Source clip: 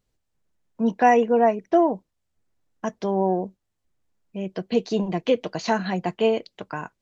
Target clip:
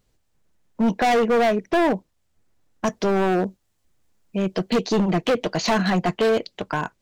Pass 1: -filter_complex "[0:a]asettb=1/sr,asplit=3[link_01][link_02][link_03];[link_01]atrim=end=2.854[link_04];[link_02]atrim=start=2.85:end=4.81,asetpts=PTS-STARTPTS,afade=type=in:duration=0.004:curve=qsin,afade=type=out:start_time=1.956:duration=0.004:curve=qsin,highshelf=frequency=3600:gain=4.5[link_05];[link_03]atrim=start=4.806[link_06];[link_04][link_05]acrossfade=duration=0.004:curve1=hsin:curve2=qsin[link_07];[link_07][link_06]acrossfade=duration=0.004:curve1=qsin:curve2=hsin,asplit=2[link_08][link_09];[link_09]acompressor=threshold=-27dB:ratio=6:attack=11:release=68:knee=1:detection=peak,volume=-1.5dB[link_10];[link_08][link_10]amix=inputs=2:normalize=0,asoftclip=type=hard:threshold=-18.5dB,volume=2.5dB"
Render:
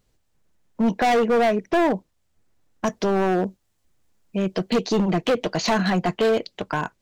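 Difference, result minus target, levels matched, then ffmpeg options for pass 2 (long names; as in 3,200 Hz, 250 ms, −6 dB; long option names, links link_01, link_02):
downward compressor: peak gain reduction +5.5 dB
-filter_complex "[0:a]asettb=1/sr,asplit=3[link_01][link_02][link_03];[link_01]atrim=end=2.854[link_04];[link_02]atrim=start=2.85:end=4.81,asetpts=PTS-STARTPTS,afade=type=in:duration=0.004:curve=qsin,afade=type=out:start_time=1.956:duration=0.004:curve=qsin,highshelf=frequency=3600:gain=4.5[link_05];[link_03]atrim=start=4.806[link_06];[link_04][link_05]acrossfade=duration=0.004:curve1=hsin:curve2=qsin[link_07];[link_07][link_06]acrossfade=duration=0.004:curve1=qsin:curve2=hsin,asplit=2[link_08][link_09];[link_09]acompressor=threshold=-20.5dB:ratio=6:attack=11:release=68:knee=1:detection=peak,volume=-1.5dB[link_10];[link_08][link_10]amix=inputs=2:normalize=0,asoftclip=type=hard:threshold=-18.5dB,volume=2.5dB"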